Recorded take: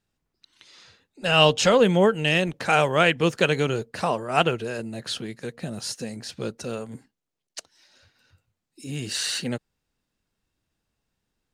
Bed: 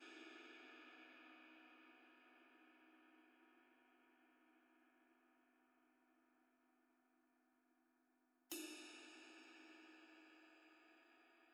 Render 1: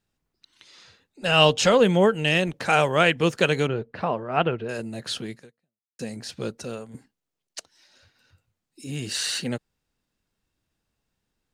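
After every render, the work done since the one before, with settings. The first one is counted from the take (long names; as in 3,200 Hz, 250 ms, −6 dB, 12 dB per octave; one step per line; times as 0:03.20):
0:03.67–0:04.69: high-frequency loss of the air 360 metres
0:05.36–0:05.99: fade out exponential
0:06.52–0:06.94: fade out, to −6.5 dB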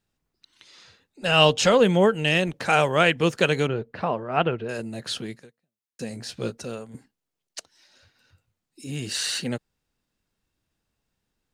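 0:06.09–0:06.58: double-tracking delay 17 ms −7.5 dB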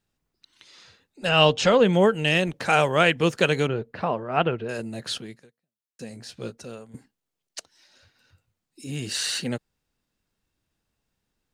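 0:01.29–0:01.93: high-frequency loss of the air 72 metres
0:05.18–0:06.94: clip gain −5 dB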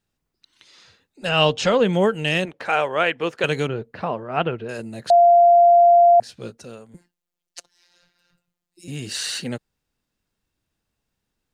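0:02.45–0:03.44: bass and treble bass −14 dB, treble −12 dB
0:05.10–0:06.20: beep over 693 Hz −9 dBFS
0:06.94–0:08.88: phases set to zero 175 Hz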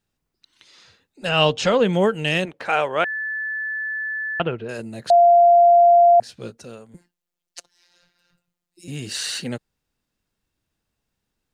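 0:03.04–0:04.40: beep over 1,740 Hz −24 dBFS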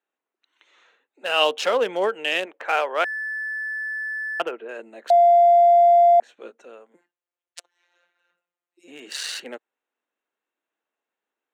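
adaptive Wiener filter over 9 samples
Bessel high-pass filter 490 Hz, order 6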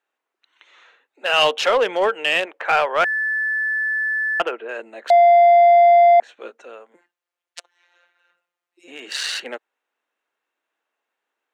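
mid-hump overdrive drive 13 dB, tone 4,000 Hz, clips at −5.5 dBFS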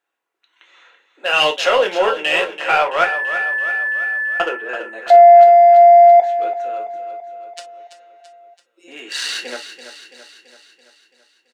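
repeating echo 334 ms, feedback 58%, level −11 dB
reverb whose tail is shaped and stops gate 80 ms falling, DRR 2.5 dB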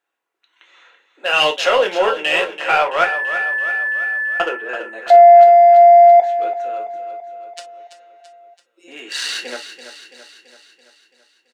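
no processing that can be heard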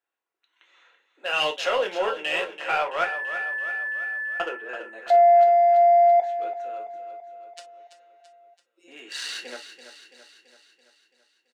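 level −9 dB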